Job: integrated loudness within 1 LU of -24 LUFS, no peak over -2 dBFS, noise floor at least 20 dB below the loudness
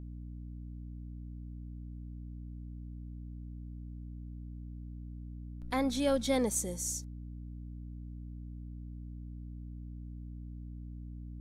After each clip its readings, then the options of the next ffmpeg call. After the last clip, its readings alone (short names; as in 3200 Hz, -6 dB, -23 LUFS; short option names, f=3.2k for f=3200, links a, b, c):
hum 60 Hz; harmonics up to 300 Hz; hum level -41 dBFS; loudness -39.5 LUFS; peak -17.0 dBFS; loudness target -24.0 LUFS
-> -af "bandreject=f=60:t=h:w=4,bandreject=f=120:t=h:w=4,bandreject=f=180:t=h:w=4,bandreject=f=240:t=h:w=4,bandreject=f=300:t=h:w=4"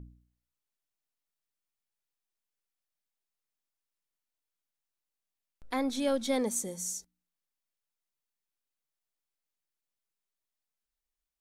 hum none; loudness -32.0 LUFS; peak -17.5 dBFS; loudness target -24.0 LUFS
-> -af "volume=8dB"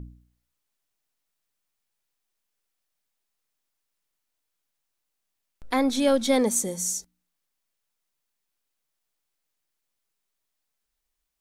loudness -24.0 LUFS; peak -9.5 dBFS; noise floor -81 dBFS